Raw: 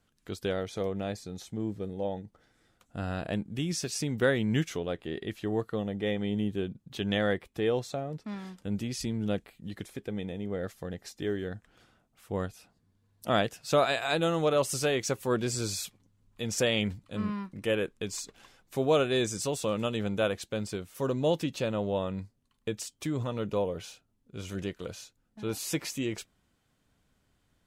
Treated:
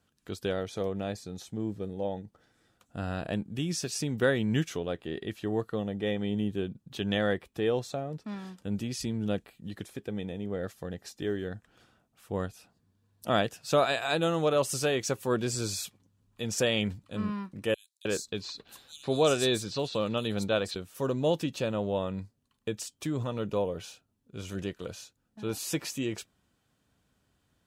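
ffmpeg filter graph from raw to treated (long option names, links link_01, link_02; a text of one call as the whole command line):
ffmpeg -i in.wav -filter_complex "[0:a]asettb=1/sr,asplit=3[link_01][link_02][link_03];[link_01]atrim=end=17.744[link_04];[link_02]atrim=start=17.74:end=20.76,asetpts=PTS-STARTPTS,afade=type=in:duration=0.004:curve=qsin,afade=type=out:start_time=3.016:duration=0.004:curve=qsin,equalizer=frequency=4100:width_type=o:width=0.36:gain=12,acrossover=split=5000[link_05][link_06];[link_05]adelay=310[link_07];[link_07][link_06]amix=inputs=2:normalize=0,atrim=end_sample=133182[link_08];[link_03]atrim=start=20.756[link_09];[link_04][link_08]acrossfade=duration=0.004:curve1=hsin:curve2=qsin[link_10];[link_10][link_09]acrossfade=duration=0.004:curve1=qsin:curve2=hsin,highpass=50,bandreject=frequency=2100:width=13" out.wav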